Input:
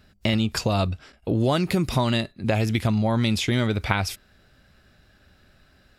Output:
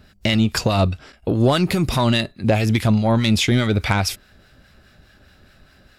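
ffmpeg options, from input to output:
-filter_complex "[0:a]aeval=exprs='0.531*(cos(1*acos(clip(val(0)/0.531,-1,1)))-cos(1*PI/2))+0.075*(cos(5*acos(clip(val(0)/0.531,-1,1)))-cos(5*PI/2))':c=same,acrossover=split=980[s0][s1];[s0]aeval=exprs='val(0)*(1-0.5/2+0.5/2*cos(2*PI*4.8*n/s))':c=same[s2];[s1]aeval=exprs='val(0)*(1-0.5/2-0.5/2*cos(2*PI*4.8*n/s))':c=same[s3];[s2][s3]amix=inputs=2:normalize=0,volume=1.5"

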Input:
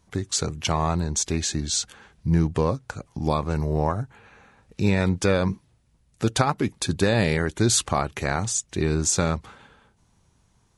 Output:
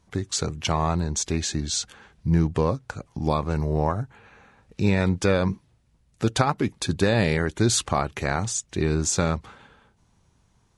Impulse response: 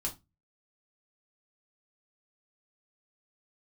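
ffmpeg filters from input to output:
-af "highshelf=f=9400:g=-7.5"

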